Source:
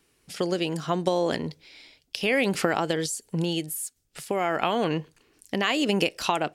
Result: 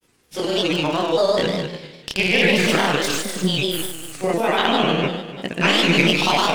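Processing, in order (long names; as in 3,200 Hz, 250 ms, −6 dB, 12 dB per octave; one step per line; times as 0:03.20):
stylus tracing distortion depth 0.056 ms
dynamic equaliser 3,200 Hz, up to +7 dB, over −42 dBFS, Q 1.2
flutter between parallel walls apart 5.2 metres, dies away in 1.4 s
granular cloud, grains 20 per second, pitch spread up and down by 3 semitones
level +1.5 dB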